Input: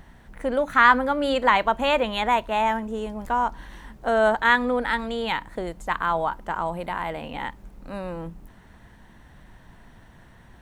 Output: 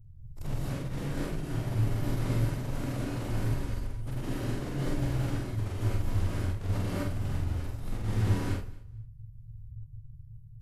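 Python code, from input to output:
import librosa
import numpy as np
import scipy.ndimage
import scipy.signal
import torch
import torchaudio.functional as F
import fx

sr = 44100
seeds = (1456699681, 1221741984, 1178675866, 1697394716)

p1 = scipy.signal.sosfilt(scipy.signal.cheby2(4, 50, [420.0, 8200.0], 'bandstop', fs=sr, output='sos'), x)
p2 = fx.dmg_crackle(p1, sr, seeds[0], per_s=22.0, level_db=-71.0)
p3 = fx.quant_dither(p2, sr, seeds[1], bits=6, dither='none')
p4 = p2 + (p3 * 10.0 ** (-4.5 / 20.0))
p5 = fx.pitch_keep_formants(p4, sr, semitones=-10.0)
p6 = fx.doubler(p5, sr, ms=46.0, db=-2.5)
p7 = p6 + fx.echo_feedback(p6, sr, ms=226, feedback_pct=19, wet_db=-21.0, dry=0)
p8 = fx.rev_gated(p7, sr, seeds[2], gate_ms=280, shape='rising', drr_db=-6.0)
y = p8 * 10.0 ** (1.0 / 20.0)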